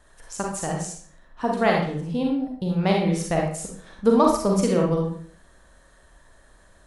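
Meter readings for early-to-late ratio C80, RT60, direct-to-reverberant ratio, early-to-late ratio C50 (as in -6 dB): 7.5 dB, 0.50 s, -0.5 dB, 2.0 dB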